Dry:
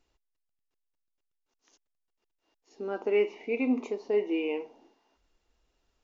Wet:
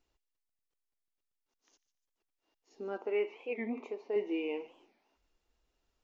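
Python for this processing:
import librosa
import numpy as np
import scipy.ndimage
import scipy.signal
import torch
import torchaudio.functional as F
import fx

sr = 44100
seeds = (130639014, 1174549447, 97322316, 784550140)

y = fx.bass_treble(x, sr, bass_db=-13, treble_db=-11, at=(2.97, 4.16))
y = fx.echo_wet_highpass(y, sr, ms=147, feedback_pct=38, hz=2100.0, wet_db=-15.0)
y = fx.record_warp(y, sr, rpm=45.0, depth_cents=250.0)
y = F.gain(torch.from_numpy(y), -5.0).numpy()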